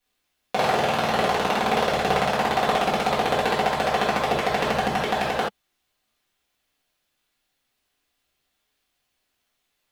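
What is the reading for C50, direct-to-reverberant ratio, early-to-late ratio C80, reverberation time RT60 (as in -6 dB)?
3.0 dB, -9.0 dB, 10.5 dB, no single decay rate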